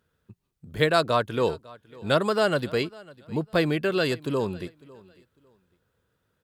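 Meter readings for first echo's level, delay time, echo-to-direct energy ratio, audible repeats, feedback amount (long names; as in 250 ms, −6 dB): −22.5 dB, 551 ms, −22.5 dB, 2, 24%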